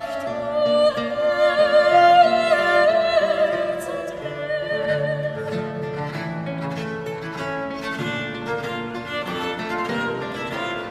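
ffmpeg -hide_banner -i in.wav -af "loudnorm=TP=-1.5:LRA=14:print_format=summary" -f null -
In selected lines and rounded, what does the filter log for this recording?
Input Integrated:    -22.0 LUFS
Input True Peak:      -3.9 dBTP
Input LRA:             9.9 LU
Input Threshold:     -32.0 LUFS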